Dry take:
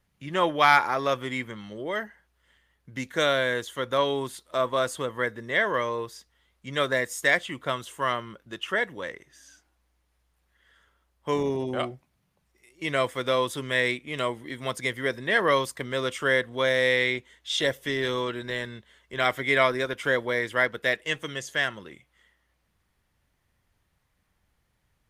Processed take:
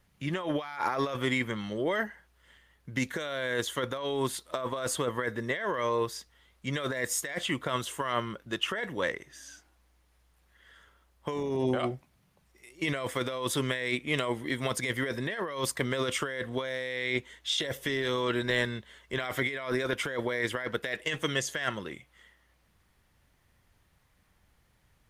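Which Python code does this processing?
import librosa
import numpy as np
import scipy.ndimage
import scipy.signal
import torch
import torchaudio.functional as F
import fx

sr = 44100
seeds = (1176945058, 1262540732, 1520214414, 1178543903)

y = fx.over_compress(x, sr, threshold_db=-31.0, ratio=-1.0)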